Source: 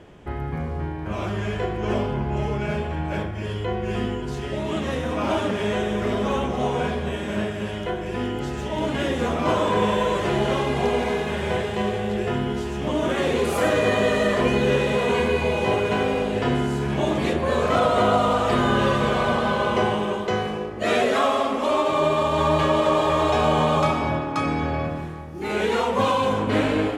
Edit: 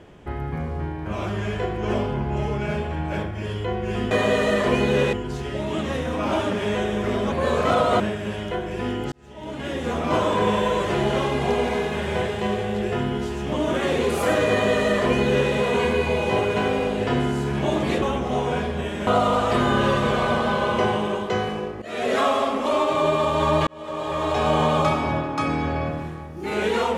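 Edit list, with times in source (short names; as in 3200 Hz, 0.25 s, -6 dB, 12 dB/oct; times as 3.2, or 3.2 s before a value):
6.3–7.35 swap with 17.37–18.05
8.47–9.47 fade in
13.84–14.86 copy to 4.11
20.8–21.11 fade in quadratic, from -14 dB
22.65–23.54 fade in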